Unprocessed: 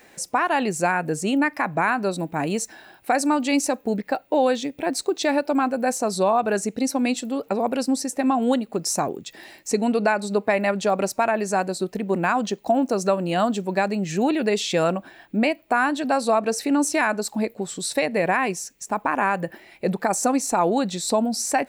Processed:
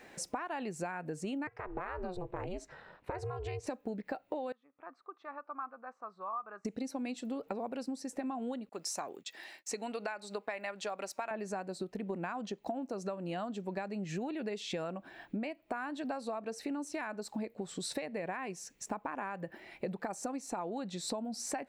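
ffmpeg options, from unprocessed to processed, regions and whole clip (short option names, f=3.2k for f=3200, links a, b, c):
-filter_complex "[0:a]asettb=1/sr,asplit=3[a][b][c];[a]atrim=end=1.474[d];[b]atrim=start=1.47:end=3.67,asetpts=PTS-STARTPTS,afade=t=in:d=0.004:c=qsin,afade=t=out:st=2.196:d=0.004:c=qsin,aemphasis=mode=reproduction:type=75kf,acompressor=threshold=-25dB:ratio=3:attack=3.2:release=140:knee=1:detection=peak,aeval=exprs='val(0)*sin(2*PI*180*n/s)':c=same[e];[c]atrim=start=3.666[f];[d][e]acrossfade=d=0.004:c1=hsin:c2=qsin[g];[g][f]acrossfade=d=0.004:c1=qsin:c2=hsin,asettb=1/sr,asplit=3[h][i][j];[h]atrim=end=4.524[k];[i]atrim=start=4.52:end=6.65,asetpts=PTS-STARTPTS,afade=t=in:d=0.004:c=qsin,afade=t=out:st=2.126:d=0.004:c=qsin,bandpass=f=1.2k:t=q:w=12,aemphasis=mode=reproduction:type=bsi[l];[j]atrim=start=6.646[m];[k][l]acrossfade=d=0.004:c1=hsin:c2=qsin[n];[n][m]acrossfade=d=0.004:c1=qsin:c2=hsin,asettb=1/sr,asplit=3[o][p][q];[o]atrim=end=8.694[r];[p]atrim=start=8.69:end=11.31,asetpts=PTS-STARTPTS,afade=t=in:d=0.004:c=qsin,afade=t=out:st=2.616:d=0.004:c=qsin,highpass=f=1.2k:p=1,agate=range=-33dB:threshold=-48dB:ratio=3:release=100:detection=peak[s];[q]atrim=start=11.306[t];[r][s]acrossfade=d=0.004:c1=hsin:c2=qsin[u];[u][t]acrossfade=d=0.004:c1=qsin:c2=hsin,lowpass=f=3.6k:p=1,acompressor=threshold=-32dB:ratio=16,volume=-2.5dB"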